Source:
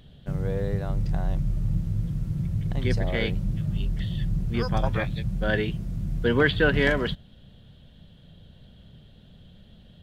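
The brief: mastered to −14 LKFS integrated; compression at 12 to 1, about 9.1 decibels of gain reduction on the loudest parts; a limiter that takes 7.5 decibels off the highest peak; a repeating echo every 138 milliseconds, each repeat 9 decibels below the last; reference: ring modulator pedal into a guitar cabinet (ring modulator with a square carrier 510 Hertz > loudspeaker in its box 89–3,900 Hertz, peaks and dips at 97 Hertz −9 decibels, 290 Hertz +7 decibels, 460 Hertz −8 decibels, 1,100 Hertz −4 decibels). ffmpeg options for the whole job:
ffmpeg -i in.wav -af "acompressor=threshold=-25dB:ratio=12,alimiter=limit=-23dB:level=0:latency=1,aecho=1:1:138|276|414|552:0.355|0.124|0.0435|0.0152,aeval=exprs='val(0)*sgn(sin(2*PI*510*n/s))':channel_layout=same,highpass=89,equalizer=frequency=97:width_type=q:width=4:gain=-9,equalizer=frequency=290:width_type=q:width=4:gain=7,equalizer=frequency=460:width_type=q:width=4:gain=-8,equalizer=frequency=1100:width_type=q:width=4:gain=-4,lowpass=frequency=3900:width=0.5412,lowpass=frequency=3900:width=1.3066,volume=18dB" out.wav

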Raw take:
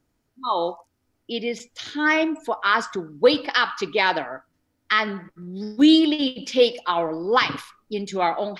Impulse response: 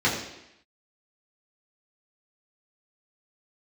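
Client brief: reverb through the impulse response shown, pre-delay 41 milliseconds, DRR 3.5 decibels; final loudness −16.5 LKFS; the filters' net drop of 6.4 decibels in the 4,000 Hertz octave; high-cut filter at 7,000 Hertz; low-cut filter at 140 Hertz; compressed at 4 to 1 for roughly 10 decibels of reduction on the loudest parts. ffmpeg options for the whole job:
-filter_complex "[0:a]highpass=140,lowpass=7000,equalizer=frequency=4000:width_type=o:gain=-8.5,acompressor=threshold=-23dB:ratio=4,asplit=2[link_01][link_02];[1:a]atrim=start_sample=2205,adelay=41[link_03];[link_02][link_03]afir=irnorm=-1:irlink=0,volume=-19dB[link_04];[link_01][link_04]amix=inputs=2:normalize=0,volume=10.5dB"

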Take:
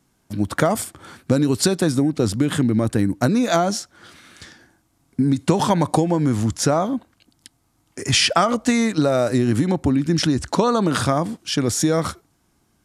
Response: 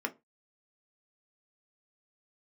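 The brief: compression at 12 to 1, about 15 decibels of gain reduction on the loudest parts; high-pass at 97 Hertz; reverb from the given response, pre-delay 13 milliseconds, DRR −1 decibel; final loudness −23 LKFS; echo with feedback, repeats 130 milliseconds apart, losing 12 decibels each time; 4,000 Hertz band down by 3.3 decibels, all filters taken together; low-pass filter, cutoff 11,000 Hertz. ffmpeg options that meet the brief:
-filter_complex "[0:a]highpass=97,lowpass=11000,equalizer=frequency=4000:width_type=o:gain=-4.5,acompressor=threshold=-29dB:ratio=12,aecho=1:1:130|260|390:0.251|0.0628|0.0157,asplit=2[link_01][link_02];[1:a]atrim=start_sample=2205,adelay=13[link_03];[link_02][link_03]afir=irnorm=-1:irlink=0,volume=-3.5dB[link_04];[link_01][link_04]amix=inputs=2:normalize=0,volume=7dB"

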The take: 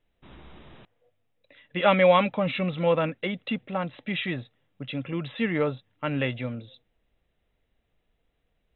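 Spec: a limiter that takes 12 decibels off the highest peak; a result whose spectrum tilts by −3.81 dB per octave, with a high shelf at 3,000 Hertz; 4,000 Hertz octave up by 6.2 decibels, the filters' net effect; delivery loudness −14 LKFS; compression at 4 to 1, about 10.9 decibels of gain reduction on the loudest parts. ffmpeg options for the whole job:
ffmpeg -i in.wav -af "highshelf=frequency=3000:gain=4,equalizer=frequency=4000:width_type=o:gain=5.5,acompressor=threshold=-27dB:ratio=4,volume=22.5dB,alimiter=limit=-4dB:level=0:latency=1" out.wav

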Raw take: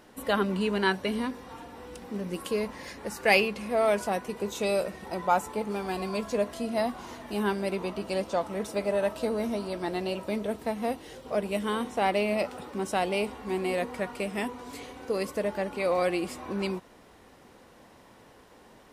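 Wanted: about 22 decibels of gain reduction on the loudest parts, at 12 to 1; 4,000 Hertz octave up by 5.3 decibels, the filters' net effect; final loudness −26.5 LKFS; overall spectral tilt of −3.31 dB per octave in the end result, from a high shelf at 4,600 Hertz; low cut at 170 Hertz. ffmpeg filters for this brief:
ffmpeg -i in.wav -af "highpass=170,equalizer=frequency=4000:width_type=o:gain=3,highshelf=frequency=4600:gain=8,acompressor=threshold=-37dB:ratio=12,volume=15dB" out.wav

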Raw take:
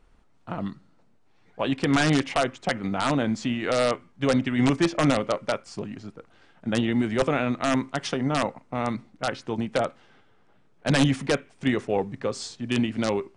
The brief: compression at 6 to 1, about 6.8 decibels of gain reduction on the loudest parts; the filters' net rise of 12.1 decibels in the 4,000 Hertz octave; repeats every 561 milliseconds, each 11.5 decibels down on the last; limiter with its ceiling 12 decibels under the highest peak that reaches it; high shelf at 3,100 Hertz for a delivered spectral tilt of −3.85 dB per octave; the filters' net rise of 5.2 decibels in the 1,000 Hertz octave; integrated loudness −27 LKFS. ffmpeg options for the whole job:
ffmpeg -i in.wav -af "equalizer=frequency=1000:width_type=o:gain=5.5,highshelf=frequency=3100:gain=9,equalizer=frequency=4000:width_type=o:gain=8.5,acompressor=threshold=-20dB:ratio=6,alimiter=limit=-16dB:level=0:latency=1,aecho=1:1:561|1122|1683:0.266|0.0718|0.0194,volume=2dB" out.wav

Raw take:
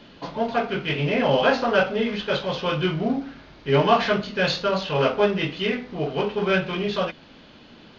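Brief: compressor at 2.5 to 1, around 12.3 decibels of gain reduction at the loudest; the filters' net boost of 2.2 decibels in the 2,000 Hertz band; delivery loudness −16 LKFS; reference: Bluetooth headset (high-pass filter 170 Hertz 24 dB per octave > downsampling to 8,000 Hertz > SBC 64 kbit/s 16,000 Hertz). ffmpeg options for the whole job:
ffmpeg -i in.wav -af "equalizer=frequency=2000:width_type=o:gain=3,acompressor=threshold=-32dB:ratio=2.5,highpass=frequency=170:width=0.5412,highpass=frequency=170:width=1.3066,aresample=8000,aresample=44100,volume=16dB" -ar 16000 -c:a sbc -b:a 64k out.sbc

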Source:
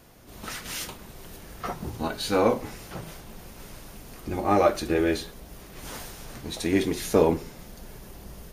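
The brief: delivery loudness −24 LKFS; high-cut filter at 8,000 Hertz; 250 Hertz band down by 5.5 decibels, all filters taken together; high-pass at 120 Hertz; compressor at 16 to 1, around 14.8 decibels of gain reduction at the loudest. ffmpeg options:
ffmpeg -i in.wav -af "highpass=120,lowpass=8000,equalizer=frequency=250:width_type=o:gain=-7.5,acompressor=threshold=-31dB:ratio=16,volume=15dB" out.wav

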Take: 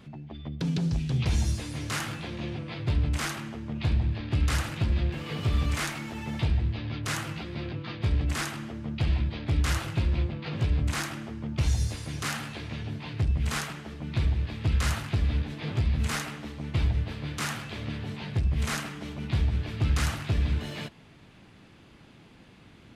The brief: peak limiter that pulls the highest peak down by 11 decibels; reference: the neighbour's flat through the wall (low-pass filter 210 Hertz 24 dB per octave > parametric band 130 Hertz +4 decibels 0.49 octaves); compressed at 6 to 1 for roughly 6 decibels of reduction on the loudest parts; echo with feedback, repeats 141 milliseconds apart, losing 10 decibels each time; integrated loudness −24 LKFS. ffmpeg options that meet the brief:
ffmpeg -i in.wav -af "acompressor=threshold=-27dB:ratio=6,alimiter=level_in=6dB:limit=-24dB:level=0:latency=1,volume=-6dB,lowpass=frequency=210:width=0.5412,lowpass=frequency=210:width=1.3066,equalizer=frequency=130:width_type=o:width=0.49:gain=4,aecho=1:1:141|282|423|564:0.316|0.101|0.0324|0.0104,volume=15dB" out.wav

